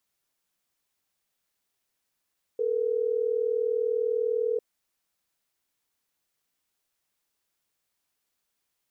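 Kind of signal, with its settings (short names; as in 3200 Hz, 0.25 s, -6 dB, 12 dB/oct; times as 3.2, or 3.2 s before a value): call progress tone ringback tone, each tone -26.5 dBFS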